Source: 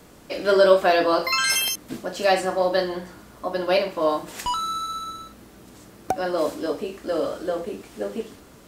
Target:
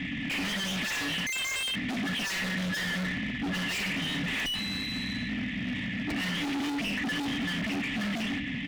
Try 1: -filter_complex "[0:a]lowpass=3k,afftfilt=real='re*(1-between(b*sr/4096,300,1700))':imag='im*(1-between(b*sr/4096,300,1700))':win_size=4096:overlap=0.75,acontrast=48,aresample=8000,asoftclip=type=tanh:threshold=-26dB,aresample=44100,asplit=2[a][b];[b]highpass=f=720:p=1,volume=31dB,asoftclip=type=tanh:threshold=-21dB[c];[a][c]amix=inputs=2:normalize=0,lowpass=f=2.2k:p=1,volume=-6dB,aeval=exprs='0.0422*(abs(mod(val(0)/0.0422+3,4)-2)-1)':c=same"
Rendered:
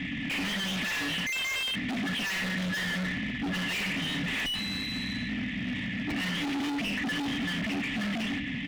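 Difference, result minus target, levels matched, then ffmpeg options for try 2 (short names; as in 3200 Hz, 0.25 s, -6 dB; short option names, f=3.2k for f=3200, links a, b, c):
soft clip: distortion +7 dB
-filter_complex "[0:a]lowpass=3k,afftfilt=real='re*(1-between(b*sr/4096,300,1700))':imag='im*(1-between(b*sr/4096,300,1700))':win_size=4096:overlap=0.75,acontrast=48,aresample=8000,asoftclip=type=tanh:threshold=-18.5dB,aresample=44100,asplit=2[a][b];[b]highpass=f=720:p=1,volume=31dB,asoftclip=type=tanh:threshold=-21dB[c];[a][c]amix=inputs=2:normalize=0,lowpass=f=2.2k:p=1,volume=-6dB,aeval=exprs='0.0422*(abs(mod(val(0)/0.0422+3,4)-2)-1)':c=same"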